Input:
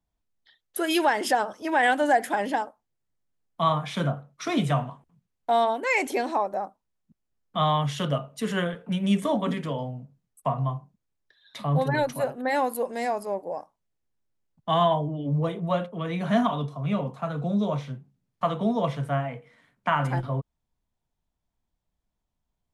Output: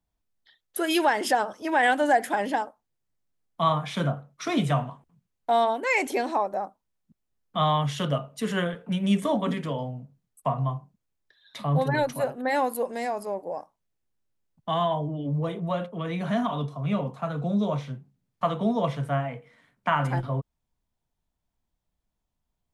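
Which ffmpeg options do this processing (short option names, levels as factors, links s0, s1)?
-filter_complex "[0:a]asettb=1/sr,asplit=3[s0][s1][s2];[s0]atrim=end=12.964[s3];[s1]atrim=start=12.96:end=16.56,asetpts=PTS-STARTPTS,afade=t=in:d=0.004:c=qsin,afade=t=out:st=3.596:d=0.004:c=qsin,acompressor=threshold=0.0447:ratio=1.5:attack=3.2:release=140:knee=1:detection=peak[s4];[s2]atrim=start=16.556[s5];[s3][s4]acrossfade=d=0.004:c1=hsin:c2=qsin[s6];[s6][s5]acrossfade=d=0.004:c1=qsin:c2=hsin"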